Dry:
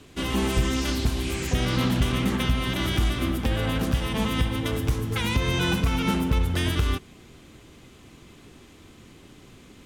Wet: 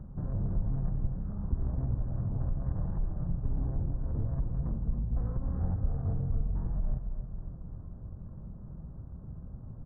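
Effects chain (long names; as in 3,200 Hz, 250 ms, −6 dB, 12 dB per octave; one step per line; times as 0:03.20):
low-shelf EQ 360 Hz +10 dB
downward compressor 2 to 1, threshold −51 dBFS, peak gain reduction 22.5 dB
Gaussian smoothing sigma 5.2 samples
slap from a distant wall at 48 metres, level −12 dB
pitch shifter −11.5 semitones
repeating echo 270 ms, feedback 60%, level −10 dB
highs frequency-modulated by the lows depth 0.52 ms
level +6 dB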